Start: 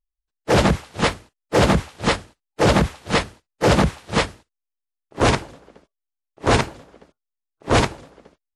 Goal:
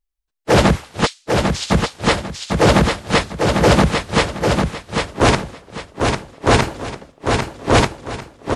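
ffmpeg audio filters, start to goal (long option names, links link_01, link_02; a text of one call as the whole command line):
ffmpeg -i in.wav -filter_complex "[0:a]asplit=3[link_01][link_02][link_03];[link_01]afade=type=out:start_time=1.05:duration=0.02[link_04];[link_02]asuperpass=centerf=5500:order=4:qfactor=1.1,afade=type=in:start_time=1.05:duration=0.02,afade=type=out:start_time=1.7:duration=0.02[link_05];[link_03]afade=type=in:start_time=1.7:duration=0.02[link_06];[link_04][link_05][link_06]amix=inputs=3:normalize=0,asettb=1/sr,asplit=3[link_07][link_08][link_09];[link_07]atrim=end=6.624[link_10];[link_08]atrim=start=6.62:end=7.71,asetpts=PTS-STARTPTS,afade=type=in:duration=0.004:curve=qsin,afade=type=out:start_time=1.086:duration=0.004:curve=qsin,acontrast=38[link_11];[link_09]atrim=start=7.706[link_12];[link_10][link_11]acrossfade=duration=0.004:curve1=hsin:curve2=qsin[link_13];[link_13][link_12]acrossfade=duration=0.004:curve1=qsin:curve2=hsin,aecho=1:1:798|1596|2394|3192:0.596|0.179|0.0536|0.0161,volume=3.5dB" out.wav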